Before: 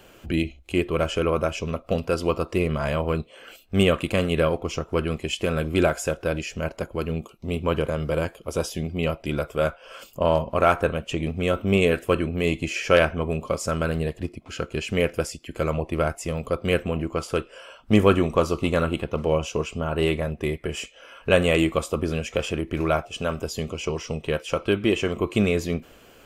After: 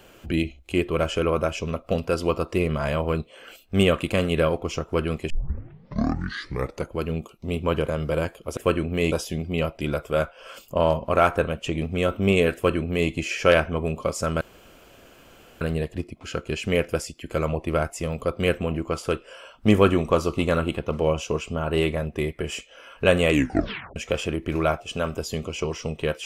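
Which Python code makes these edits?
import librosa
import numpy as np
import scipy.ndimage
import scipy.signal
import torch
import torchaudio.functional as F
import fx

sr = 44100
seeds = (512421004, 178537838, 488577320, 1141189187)

y = fx.edit(x, sr, fx.tape_start(start_s=5.3, length_s=1.63),
    fx.duplicate(start_s=12.0, length_s=0.55, to_s=8.57),
    fx.insert_room_tone(at_s=13.86, length_s=1.2),
    fx.tape_stop(start_s=21.56, length_s=0.65), tone=tone)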